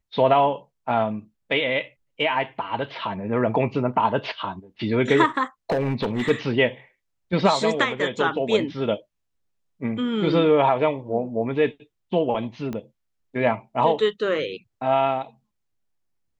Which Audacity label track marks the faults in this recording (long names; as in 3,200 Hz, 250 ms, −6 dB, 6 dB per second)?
5.700000	6.310000	clipping −18.5 dBFS
12.730000	12.730000	click −19 dBFS